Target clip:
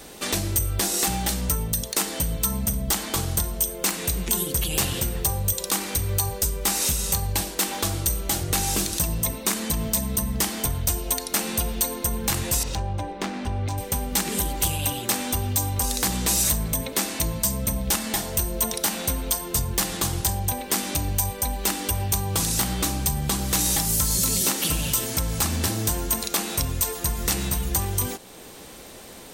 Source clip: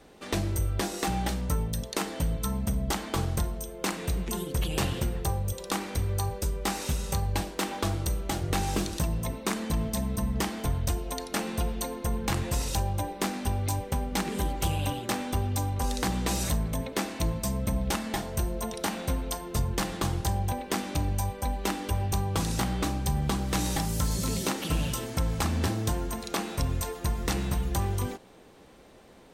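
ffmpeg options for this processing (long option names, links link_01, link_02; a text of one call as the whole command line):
ffmpeg -i in.wav -filter_complex "[0:a]alimiter=level_in=3.5dB:limit=-24dB:level=0:latency=1:release=452,volume=-3.5dB,asettb=1/sr,asplit=3[link_01][link_02][link_03];[link_01]atrim=end=12.634[link_04];[link_02]atrim=start=12.63:end=13.78,asetpts=PTS-STARTPTS,afade=type=in:duration=0.004:curve=qsin,afade=type=out:start_time=1.146:duration=0.004:curve=qsin,adynamicsmooth=sensitivity=3.5:basefreq=2500[link_05];[link_03]atrim=start=13.776[link_06];[link_04][link_05]acrossfade=duration=0.004:curve1=hsin:curve2=qsin[link_07];[link_07][link_06]acrossfade=duration=0.004:curve1=qsin:curve2=hsin,crystalizer=i=3.5:c=0,aeval=exprs='0.0841*(abs(mod(val(0)/0.0841+3,4)-2)-1)':channel_layout=same,volume=8.5dB" out.wav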